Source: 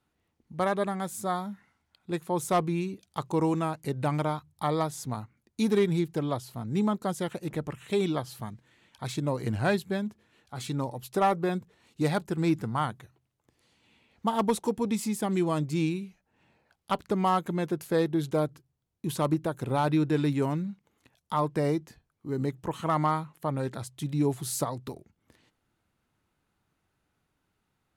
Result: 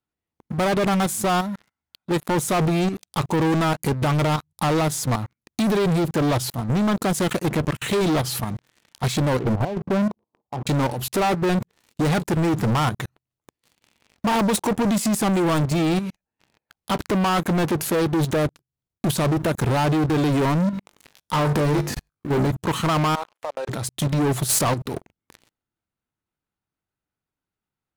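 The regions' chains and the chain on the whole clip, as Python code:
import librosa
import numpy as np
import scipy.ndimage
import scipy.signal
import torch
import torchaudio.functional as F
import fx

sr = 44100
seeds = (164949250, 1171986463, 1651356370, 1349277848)

y = fx.chain(x, sr, fx.steep_lowpass(hz=1100.0, slope=72),
    fx.low_shelf(hz=120.0, db=-11.5),
    fx.over_compress(threshold_db=-31.0, ratio=-0.5), at=(9.39, 10.67))
y = fx.chain(y, sr, fx.transient(attack_db=-5, sustain_db=5),
    fx.room_flutter(wall_m=3.5, rt60_s=0.25), at=(20.71, 22.51))
y = fx.chain(y, sr, fx.over_compress(threshold_db=-34.0, ratio=-0.5),
    fx.ladder_highpass(hz=480.0, resonance_pct=40),
    fx.air_absorb(metres=65.0), at=(23.15, 23.69))
y = fx.level_steps(y, sr, step_db=17)
y = fx.leveller(y, sr, passes=5)
y = F.gain(torch.from_numpy(y), 5.5).numpy()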